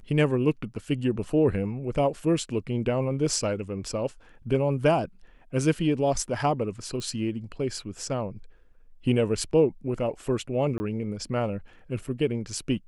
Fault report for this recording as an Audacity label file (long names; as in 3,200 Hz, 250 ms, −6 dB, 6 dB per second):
7.000000	7.000000	click −23 dBFS
10.780000	10.800000	drop-out 20 ms